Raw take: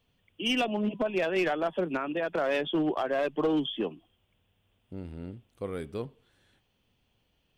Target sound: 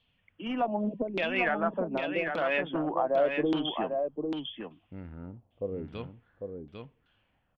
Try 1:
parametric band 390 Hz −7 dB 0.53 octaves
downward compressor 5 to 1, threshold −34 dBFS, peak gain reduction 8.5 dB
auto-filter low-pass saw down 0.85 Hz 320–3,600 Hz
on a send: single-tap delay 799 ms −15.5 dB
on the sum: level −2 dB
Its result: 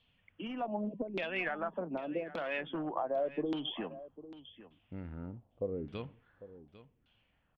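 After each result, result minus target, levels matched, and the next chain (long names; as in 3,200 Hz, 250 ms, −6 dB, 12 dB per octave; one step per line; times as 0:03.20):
downward compressor: peak gain reduction +8.5 dB; echo-to-direct −10.5 dB
parametric band 390 Hz −7 dB 0.53 octaves
auto-filter low-pass saw down 0.85 Hz 320–3,600 Hz
on a send: single-tap delay 799 ms −15.5 dB
on the sum: level −2 dB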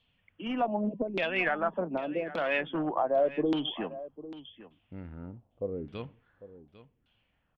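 echo-to-direct −10.5 dB
parametric band 390 Hz −7 dB 0.53 octaves
auto-filter low-pass saw down 0.85 Hz 320–3,600 Hz
on a send: single-tap delay 799 ms −5 dB
on the sum: level −2 dB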